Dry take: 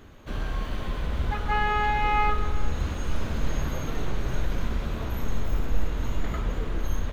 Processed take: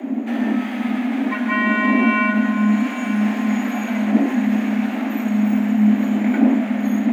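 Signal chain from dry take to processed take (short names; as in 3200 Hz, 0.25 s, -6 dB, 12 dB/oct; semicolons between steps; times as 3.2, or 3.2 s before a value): wind noise 100 Hz -24 dBFS; graphic EQ 125/250/500/1000/2000/4000 Hz -12/-10/+6/-4/+10/-9 dB; in parallel at -0.5 dB: limiter -21.5 dBFS, peak gain reduction 15 dB; on the sum: frequency shift +210 Hz; echo with dull and thin repeats by turns 0.425 s, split 1200 Hz, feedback 74%, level -11 dB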